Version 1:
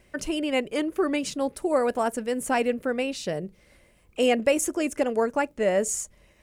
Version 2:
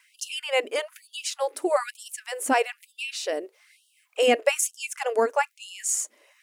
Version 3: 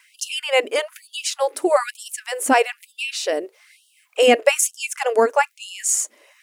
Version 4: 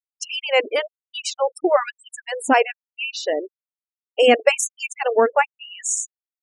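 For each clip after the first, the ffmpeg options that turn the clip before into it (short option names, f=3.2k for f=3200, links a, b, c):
-af "lowshelf=f=230:t=q:w=1.5:g=9,afftfilt=real='re*gte(b*sr/1024,250*pow(2800/250,0.5+0.5*sin(2*PI*1.1*pts/sr)))':imag='im*gte(b*sr/1024,250*pow(2800/250,0.5+0.5*sin(2*PI*1.1*pts/sr)))':win_size=1024:overlap=0.75,volume=3.5dB"
-af "equalizer=f=150:w=5.2:g=11,volume=6dB"
-af "afftfilt=real='re*gte(hypot(re,im),0.0631)':imag='im*gte(hypot(re,im),0.0631)':win_size=1024:overlap=0.75,lowpass=7.4k"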